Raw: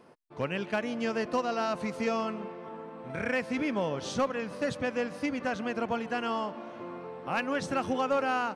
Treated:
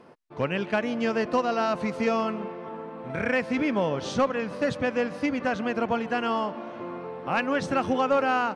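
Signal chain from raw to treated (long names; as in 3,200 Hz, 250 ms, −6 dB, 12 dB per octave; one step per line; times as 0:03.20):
high-shelf EQ 7,800 Hz −12 dB
level +5 dB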